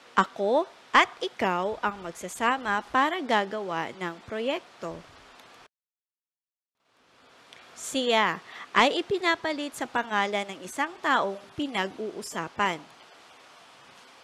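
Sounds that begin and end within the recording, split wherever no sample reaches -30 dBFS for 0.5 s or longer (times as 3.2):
7.53–12.76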